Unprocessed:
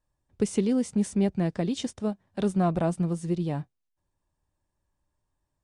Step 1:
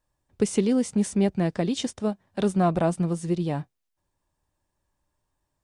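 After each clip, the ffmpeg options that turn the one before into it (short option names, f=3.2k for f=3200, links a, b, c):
-af "lowshelf=f=260:g=-4.5,volume=4.5dB"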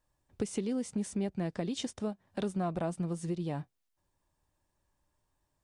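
-af "acompressor=threshold=-34dB:ratio=2.5,volume=-1dB"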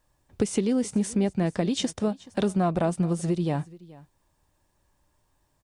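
-af "aecho=1:1:427:0.0891,volume=9dB"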